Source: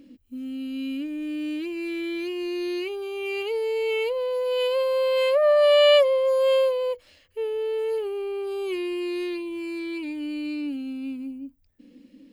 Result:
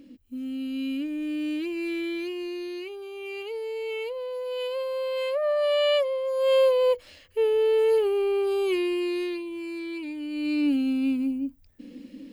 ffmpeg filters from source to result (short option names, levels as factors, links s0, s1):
-af "volume=13.3,afade=t=out:st=1.92:d=0.78:silence=0.446684,afade=t=in:st=6.33:d=0.58:silence=0.251189,afade=t=out:st=8.36:d=1.1:silence=0.398107,afade=t=in:st=10.3:d=0.41:silence=0.316228"